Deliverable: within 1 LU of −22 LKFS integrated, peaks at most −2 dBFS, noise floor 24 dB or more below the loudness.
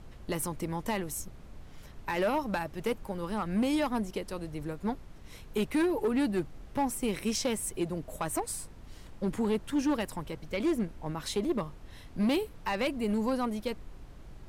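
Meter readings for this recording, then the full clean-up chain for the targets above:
share of clipped samples 1.6%; peaks flattened at −23.0 dBFS; background noise floor −49 dBFS; target noise floor −57 dBFS; integrated loudness −32.5 LKFS; sample peak −23.0 dBFS; target loudness −22.0 LKFS
→ clipped peaks rebuilt −23 dBFS
noise reduction from a noise print 8 dB
level +10.5 dB

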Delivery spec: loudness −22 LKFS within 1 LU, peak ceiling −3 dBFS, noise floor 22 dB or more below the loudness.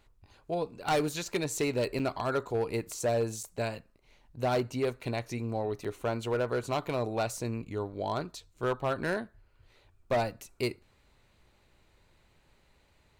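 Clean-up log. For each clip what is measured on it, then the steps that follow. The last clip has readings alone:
share of clipped samples 1.4%; peaks flattened at −23.0 dBFS; number of dropouts 3; longest dropout 5.8 ms; integrated loudness −32.5 LKFS; sample peak −23.0 dBFS; target loudness −22.0 LKFS
→ clipped peaks rebuilt −23 dBFS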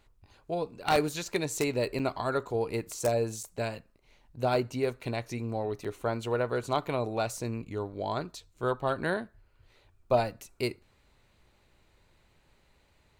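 share of clipped samples 0.0%; number of dropouts 3; longest dropout 5.8 ms
→ repair the gap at 0:01.99/0:03.43/0:05.84, 5.8 ms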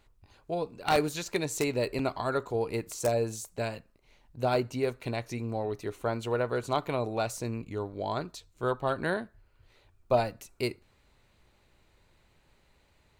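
number of dropouts 0; integrated loudness −31.5 LKFS; sample peak −14.0 dBFS; target loudness −22.0 LKFS
→ level +9.5 dB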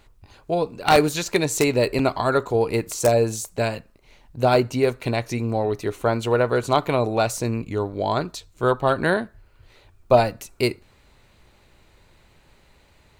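integrated loudness −22.0 LKFS; sample peak −4.5 dBFS; background noise floor −57 dBFS

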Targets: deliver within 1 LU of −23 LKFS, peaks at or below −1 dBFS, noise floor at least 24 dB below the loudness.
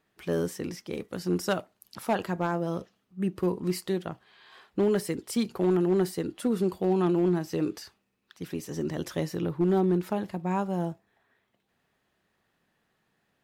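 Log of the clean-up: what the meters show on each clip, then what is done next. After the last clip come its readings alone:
share of clipped samples 0.6%; peaks flattened at −18.0 dBFS; integrated loudness −29.0 LKFS; sample peak −18.0 dBFS; target loudness −23.0 LKFS
→ clipped peaks rebuilt −18 dBFS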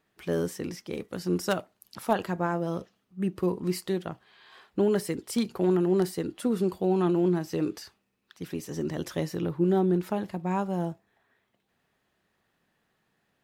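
share of clipped samples 0.0%; integrated loudness −29.0 LKFS; sample peak −10.5 dBFS; target loudness −23.0 LKFS
→ level +6 dB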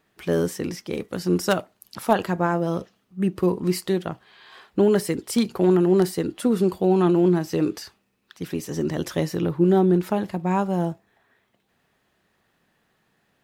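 integrated loudness −23.0 LKFS; sample peak −4.5 dBFS; background noise floor −69 dBFS

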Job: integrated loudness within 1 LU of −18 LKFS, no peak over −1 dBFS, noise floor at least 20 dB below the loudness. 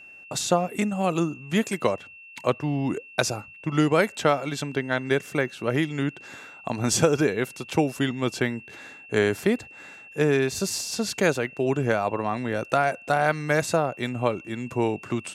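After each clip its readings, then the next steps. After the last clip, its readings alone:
interfering tone 2,700 Hz; level of the tone −44 dBFS; integrated loudness −25.5 LKFS; sample peak −4.0 dBFS; target loudness −18.0 LKFS
→ notch filter 2,700 Hz, Q 30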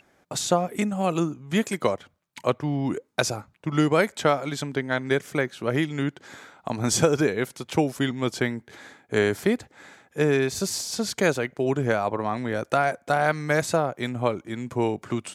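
interfering tone none found; integrated loudness −25.5 LKFS; sample peak −4.5 dBFS; target loudness −18.0 LKFS
→ level +7.5 dB
brickwall limiter −1 dBFS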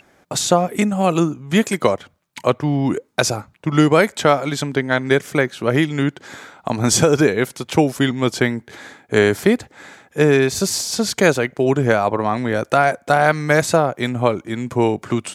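integrated loudness −18.0 LKFS; sample peak −1.0 dBFS; background noise floor −57 dBFS

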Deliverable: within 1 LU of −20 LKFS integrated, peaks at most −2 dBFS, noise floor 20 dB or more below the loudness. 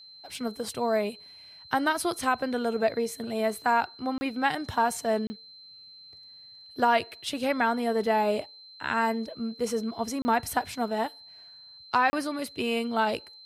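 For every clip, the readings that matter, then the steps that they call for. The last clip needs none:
number of dropouts 4; longest dropout 30 ms; interfering tone 4,100 Hz; level of the tone −47 dBFS; integrated loudness −28.0 LKFS; sample peak −10.5 dBFS; target loudness −20.0 LKFS
→ repair the gap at 0:04.18/0:05.27/0:10.22/0:12.10, 30 ms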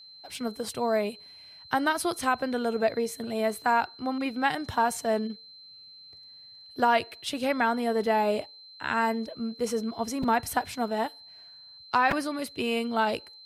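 number of dropouts 0; interfering tone 4,100 Hz; level of the tone −47 dBFS
→ notch filter 4,100 Hz, Q 30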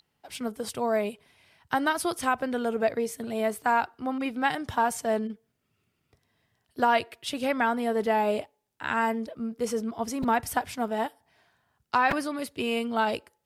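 interfering tone none found; integrated loudness −28.5 LKFS; sample peak −11.0 dBFS; target loudness −20.0 LKFS
→ level +8.5 dB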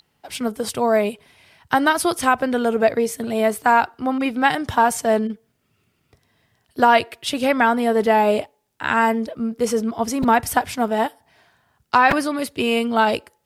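integrated loudness −20.0 LKFS; sample peak −2.5 dBFS; background noise floor −68 dBFS

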